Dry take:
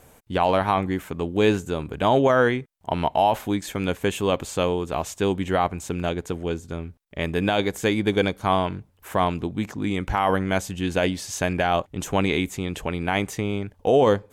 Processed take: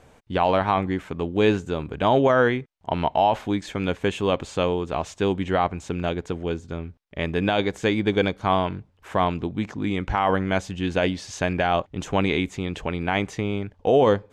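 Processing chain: low-pass 5.2 kHz 12 dB/octave

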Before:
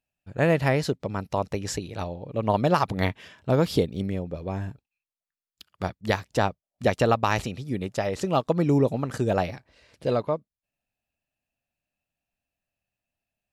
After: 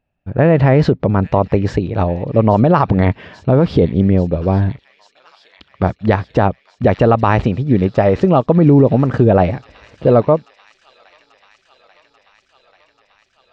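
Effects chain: 0.58–1.34 s: transient shaper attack -2 dB, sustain +5 dB; tape spacing loss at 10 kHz 42 dB; feedback echo behind a high-pass 838 ms, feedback 77%, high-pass 4.1 kHz, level -10.5 dB; loudness maximiser +18.5 dB; trim -1 dB

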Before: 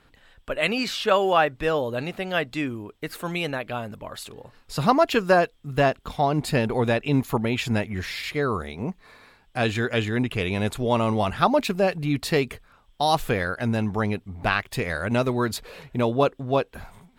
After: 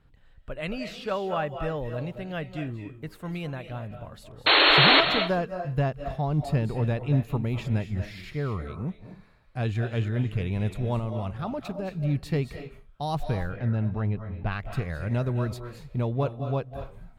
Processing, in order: FFT filter 150 Hz 0 dB, 240 Hz -9 dB, 9.6 kHz -18 dB; 4.46–5.01 s: painted sound noise 270–4400 Hz -20 dBFS; 10.99–11.95 s: level held to a coarse grid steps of 11 dB; 13.23–14.52 s: distance through air 150 m; reverberation RT60 0.35 s, pre-delay 179 ms, DRR 7.5 dB; trim +2 dB

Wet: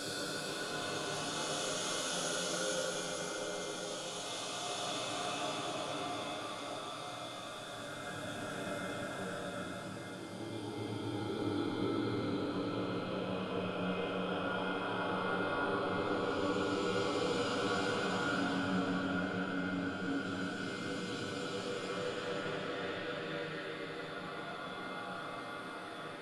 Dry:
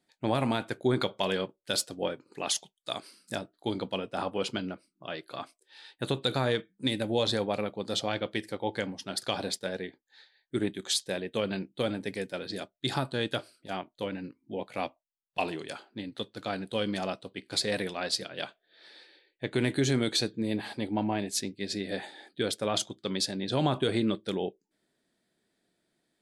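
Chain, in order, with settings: chunks repeated in reverse 336 ms, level -3 dB; peaking EQ 1.4 kHz +12 dB 0.39 oct; transient shaper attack -8 dB, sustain +5 dB; whistle 2.1 kHz -54 dBFS; Paulstretch 8×, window 0.50 s, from 2.27 s; echo that smears into a reverb 1157 ms, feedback 74%, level -14 dB; simulated room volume 44 m³, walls mixed, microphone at 0.64 m; trim -8.5 dB

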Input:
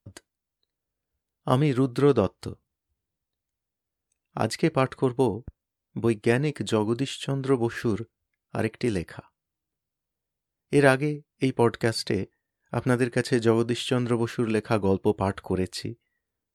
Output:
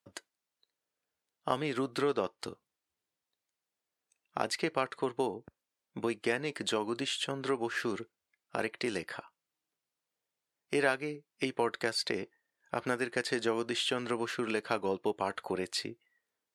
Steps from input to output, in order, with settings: frequency weighting A; compression 2:1, threshold -34 dBFS, peak gain reduction 11 dB; trim +2 dB

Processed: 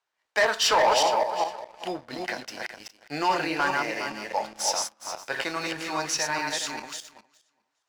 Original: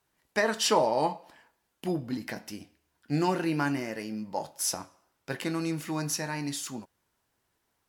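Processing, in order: backward echo that repeats 206 ms, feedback 40%, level -3 dB; three-band isolator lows -21 dB, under 490 Hz, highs -21 dB, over 7.1 kHz; waveshaping leveller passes 2

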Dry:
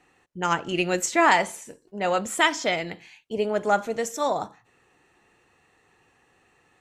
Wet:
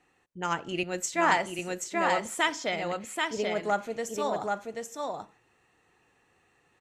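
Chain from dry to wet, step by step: on a send: delay 783 ms -3.5 dB; 0.83–1.59 s: on the sum: three bands expanded up and down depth 40%; trim -6 dB

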